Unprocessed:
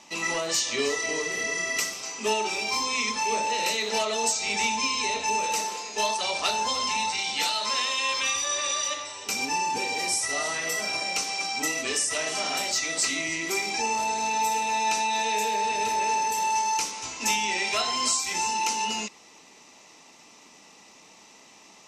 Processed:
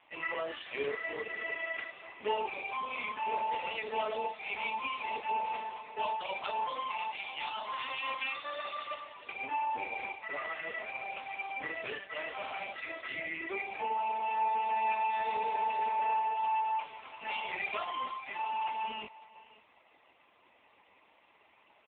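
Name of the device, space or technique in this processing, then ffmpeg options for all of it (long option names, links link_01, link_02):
satellite phone: -af "highpass=370,lowpass=3200,aecho=1:1:549:0.112,volume=-3.5dB" -ar 8000 -c:a libopencore_amrnb -b:a 5150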